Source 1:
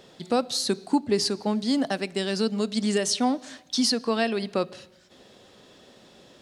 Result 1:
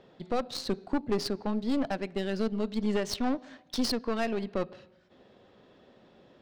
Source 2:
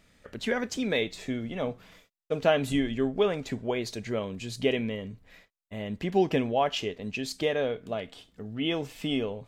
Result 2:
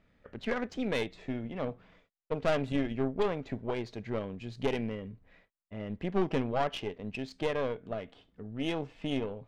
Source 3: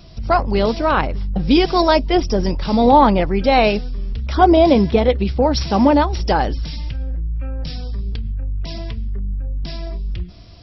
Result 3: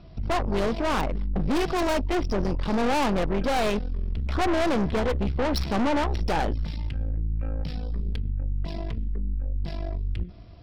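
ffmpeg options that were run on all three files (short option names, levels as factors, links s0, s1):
-af "adynamicsmooth=sensitivity=1.5:basefreq=2600,aeval=exprs='(tanh(12.6*val(0)+0.7)-tanh(0.7))/12.6':c=same"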